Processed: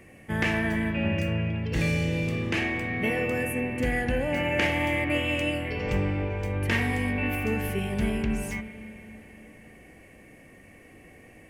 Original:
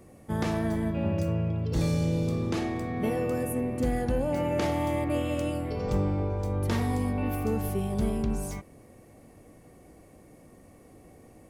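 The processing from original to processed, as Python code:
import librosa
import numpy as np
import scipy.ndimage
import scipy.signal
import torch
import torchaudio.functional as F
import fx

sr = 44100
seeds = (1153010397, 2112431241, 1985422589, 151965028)

y = fx.band_shelf(x, sr, hz=2200.0, db=14.0, octaves=1.1)
y = fx.rev_spring(y, sr, rt60_s=3.6, pass_ms=(37, 50), chirp_ms=35, drr_db=10.5)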